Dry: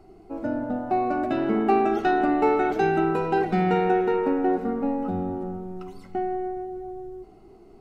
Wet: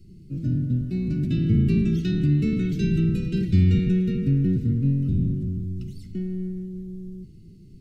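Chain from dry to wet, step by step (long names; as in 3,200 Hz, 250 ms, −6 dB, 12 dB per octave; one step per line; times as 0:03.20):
sub-octave generator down 1 octave, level +3 dB
Chebyshev band-stop filter 190–3,800 Hz, order 2
level +4 dB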